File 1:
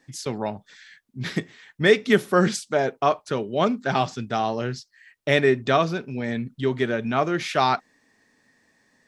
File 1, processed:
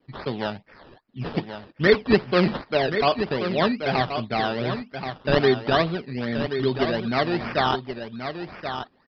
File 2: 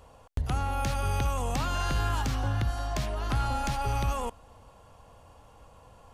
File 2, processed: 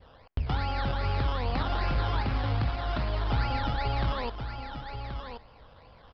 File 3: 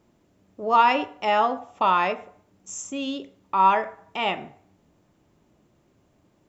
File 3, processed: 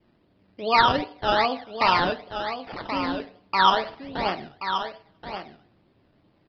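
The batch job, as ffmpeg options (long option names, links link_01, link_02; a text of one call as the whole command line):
ffmpeg -i in.wav -filter_complex "[0:a]adynamicequalizer=threshold=0.0178:dfrequency=1500:dqfactor=0.99:tfrequency=1500:tqfactor=0.99:attack=5:release=100:ratio=0.375:range=2.5:mode=cutabove:tftype=bell,acrusher=samples=16:mix=1:aa=0.000001:lfo=1:lforange=9.6:lforate=2.5,asplit=2[link_01][link_02];[link_02]aecho=0:1:1079:0.376[link_03];[link_01][link_03]amix=inputs=2:normalize=0,aresample=11025,aresample=44100" out.wav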